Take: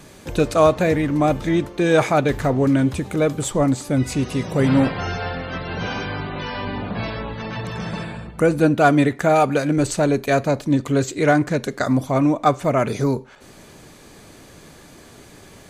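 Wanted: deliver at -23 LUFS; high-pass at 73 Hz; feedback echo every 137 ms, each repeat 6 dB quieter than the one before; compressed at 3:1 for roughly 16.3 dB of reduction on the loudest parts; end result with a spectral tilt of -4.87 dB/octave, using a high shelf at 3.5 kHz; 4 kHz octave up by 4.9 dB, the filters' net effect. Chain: high-pass 73 Hz; treble shelf 3.5 kHz -4 dB; peaking EQ 4 kHz +8.5 dB; compression 3:1, threshold -34 dBFS; feedback delay 137 ms, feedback 50%, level -6 dB; trim +9.5 dB

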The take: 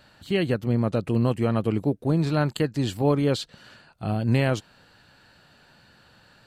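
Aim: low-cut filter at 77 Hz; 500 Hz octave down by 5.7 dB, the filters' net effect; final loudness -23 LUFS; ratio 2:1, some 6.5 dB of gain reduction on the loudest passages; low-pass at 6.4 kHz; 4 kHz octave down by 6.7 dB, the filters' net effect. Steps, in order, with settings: high-pass 77 Hz; low-pass 6.4 kHz; peaking EQ 500 Hz -7 dB; peaking EQ 4 kHz -8.5 dB; compression 2:1, threshold -31 dBFS; trim +9.5 dB

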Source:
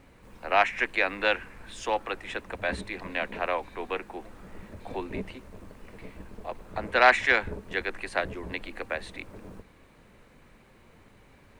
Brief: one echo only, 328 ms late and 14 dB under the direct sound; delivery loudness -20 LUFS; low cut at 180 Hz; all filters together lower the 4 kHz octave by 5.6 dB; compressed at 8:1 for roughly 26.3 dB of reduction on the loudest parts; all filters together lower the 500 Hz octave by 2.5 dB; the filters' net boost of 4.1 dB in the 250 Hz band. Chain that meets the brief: high-pass 180 Hz; peaking EQ 250 Hz +8.5 dB; peaking EQ 500 Hz -5 dB; peaking EQ 4 kHz -7.5 dB; compression 8:1, threshold -43 dBFS; delay 328 ms -14 dB; trim +28 dB

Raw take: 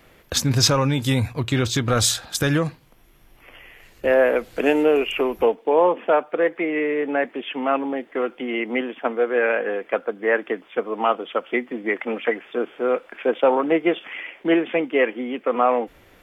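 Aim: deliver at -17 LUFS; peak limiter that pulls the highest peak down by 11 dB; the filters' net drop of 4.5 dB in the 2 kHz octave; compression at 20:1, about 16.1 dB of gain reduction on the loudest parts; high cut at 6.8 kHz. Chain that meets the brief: low-pass 6.8 kHz; peaking EQ 2 kHz -5.5 dB; compression 20:1, threshold -29 dBFS; trim +20.5 dB; peak limiter -7.5 dBFS

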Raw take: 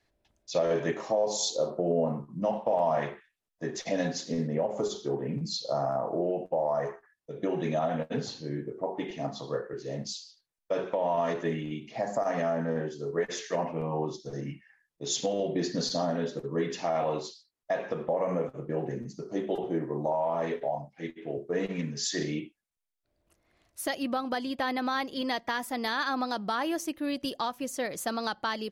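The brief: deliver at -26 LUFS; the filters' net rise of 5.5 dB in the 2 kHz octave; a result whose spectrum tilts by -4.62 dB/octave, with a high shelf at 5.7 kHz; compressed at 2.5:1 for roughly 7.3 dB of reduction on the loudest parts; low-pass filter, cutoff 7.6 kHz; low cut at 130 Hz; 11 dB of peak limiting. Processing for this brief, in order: high-pass 130 Hz; low-pass 7.6 kHz; peaking EQ 2 kHz +7.5 dB; treble shelf 5.7 kHz -7.5 dB; compression 2.5:1, threshold -33 dBFS; trim +13.5 dB; peak limiter -16 dBFS

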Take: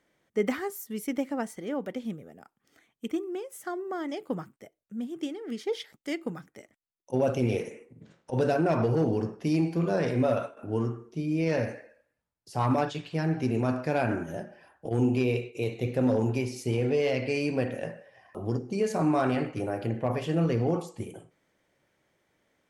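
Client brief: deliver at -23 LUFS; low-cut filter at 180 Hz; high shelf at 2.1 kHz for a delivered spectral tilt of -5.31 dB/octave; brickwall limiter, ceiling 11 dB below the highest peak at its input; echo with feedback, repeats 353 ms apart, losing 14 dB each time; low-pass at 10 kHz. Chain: high-pass 180 Hz; low-pass 10 kHz; treble shelf 2.1 kHz -7.5 dB; peak limiter -26.5 dBFS; feedback delay 353 ms, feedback 20%, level -14 dB; trim +13.5 dB

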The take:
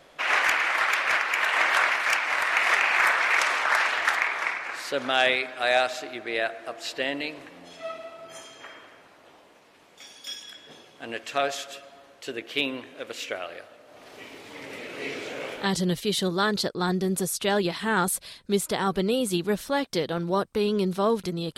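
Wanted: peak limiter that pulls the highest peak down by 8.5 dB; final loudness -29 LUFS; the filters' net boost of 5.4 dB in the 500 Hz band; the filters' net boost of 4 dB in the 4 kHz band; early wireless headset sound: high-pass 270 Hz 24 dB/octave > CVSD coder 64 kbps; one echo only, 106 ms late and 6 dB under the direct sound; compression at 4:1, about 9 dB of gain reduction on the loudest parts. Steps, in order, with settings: peaking EQ 500 Hz +7 dB; peaking EQ 4 kHz +5 dB; compression 4:1, threshold -25 dBFS; peak limiter -18.5 dBFS; high-pass 270 Hz 24 dB/octave; delay 106 ms -6 dB; CVSD coder 64 kbps

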